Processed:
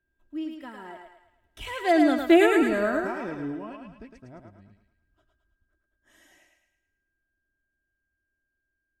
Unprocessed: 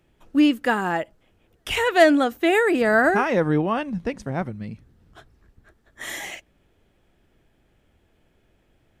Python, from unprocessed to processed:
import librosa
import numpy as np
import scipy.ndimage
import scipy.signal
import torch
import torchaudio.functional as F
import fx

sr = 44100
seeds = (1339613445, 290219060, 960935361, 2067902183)

y = fx.doppler_pass(x, sr, speed_mps=20, closest_m=3.7, pass_at_s=2.34)
y = fx.low_shelf(y, sr, hz=330.0, db=8.5)
y = y + 0.56 * np.pad(y, (int(3.1 * sr / 1000.0), 0))[:len(y)]
y = fx.echo_thinned(y, sr, ms=108, feedback_pct=49, hz=450.0, wet_db=-3.5)
y = y + 10.0 ** (-76.0 / 20.0) * np.sin(2.0 * np.pi * 1600.0 * np.arange(len(y)) / sr)
y = y * librosa.db_to_amplitude(-3.5)